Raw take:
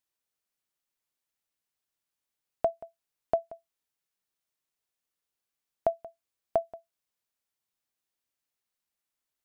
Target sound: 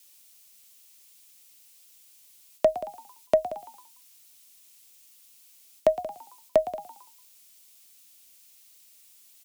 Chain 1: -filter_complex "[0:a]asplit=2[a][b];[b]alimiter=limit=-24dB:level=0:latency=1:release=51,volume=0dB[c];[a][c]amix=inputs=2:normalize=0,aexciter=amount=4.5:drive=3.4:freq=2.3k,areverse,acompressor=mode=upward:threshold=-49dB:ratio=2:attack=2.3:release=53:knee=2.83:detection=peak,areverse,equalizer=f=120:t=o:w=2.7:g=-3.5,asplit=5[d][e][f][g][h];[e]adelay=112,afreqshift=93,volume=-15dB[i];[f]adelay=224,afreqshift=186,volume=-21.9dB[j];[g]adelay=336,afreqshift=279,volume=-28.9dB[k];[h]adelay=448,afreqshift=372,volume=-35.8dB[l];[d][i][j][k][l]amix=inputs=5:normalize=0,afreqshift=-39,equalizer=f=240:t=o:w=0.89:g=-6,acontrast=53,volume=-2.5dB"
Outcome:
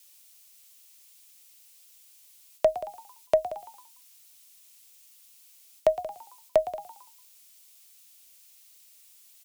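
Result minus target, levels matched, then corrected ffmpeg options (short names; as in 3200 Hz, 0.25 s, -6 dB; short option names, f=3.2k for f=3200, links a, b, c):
250 Hz band -6.5 dB
-filter_complex "[0:a]asplit=2[a][b];[b]alimiter=limit=-24dB:level=0:latency=1:release=51,volume=0dB[c];[a][c]amix=inputs=2:normalize=0,aexciter=amount=4.5:drive=3.4:freq=2.3k,areverse,acompressor=mode=upward:threshold=-49dB:ratio=2:attack=2.3:release=53:knee=2.83:detection=peak,areverse,equalizer=f=120:t=o:w=2.7:g=-3.5,asplit=5[d][e][f][g][h];[e]adelay=112,afreqshift=93,volume=-15dB[i];[f]adelay=224,afreqshift=186,volume=-21.9dB[j];[g]adelay=336,afreqshift=279,volume=-28.9dB[k];[h]adelay=448,afreqshift=372,volume=-35.8dB[l];[d][i][j][k][l]amix=inputs=5:normalize=0,afreqshift=-39,equalizer=f=240:t=o:w=0.89:g=6,acontrast=53,volume=-2.5dB"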